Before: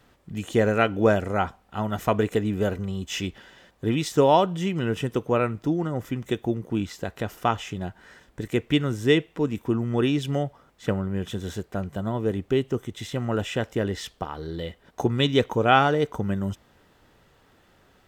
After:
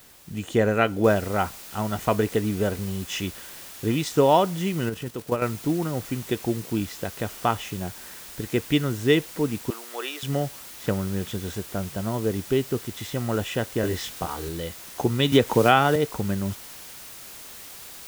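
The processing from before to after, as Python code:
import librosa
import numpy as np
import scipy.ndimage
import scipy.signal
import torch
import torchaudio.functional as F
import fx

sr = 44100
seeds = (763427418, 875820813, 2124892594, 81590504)

y = fx.noise_floor_step(x, sr, seeds[0], at_s=1.04, before_db=-52, after_db=-42, tilt_db=0.0)
y = fx.level_steps(y, sr, step_db=10, at=(4.89, 5.42))
y = fx.bessel_highpass(y, sr, hz=740.0, order=4, at=(9.7, 10.23))
y = fx.doubler(y, sr, ms=23.0, db=-2.5, at=(13.81, 14.49))
y = fx.band_squash(y, sr, depth_pct=100, at=(15.32, 15.96))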